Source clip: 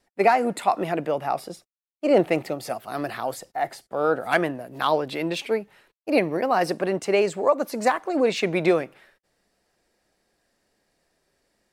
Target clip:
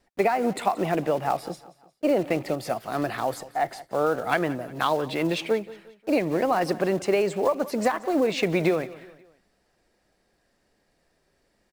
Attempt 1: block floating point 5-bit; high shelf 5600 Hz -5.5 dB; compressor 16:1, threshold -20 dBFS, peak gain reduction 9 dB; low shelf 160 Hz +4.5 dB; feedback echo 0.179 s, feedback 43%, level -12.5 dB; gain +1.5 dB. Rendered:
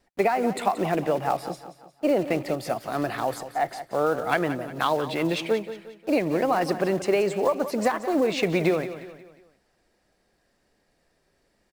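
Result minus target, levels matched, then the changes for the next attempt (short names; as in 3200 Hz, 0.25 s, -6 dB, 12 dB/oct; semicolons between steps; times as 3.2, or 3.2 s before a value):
echo-to-direct +6 dB
change: feedback echo 0.179 s, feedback 43%, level -18.5 dB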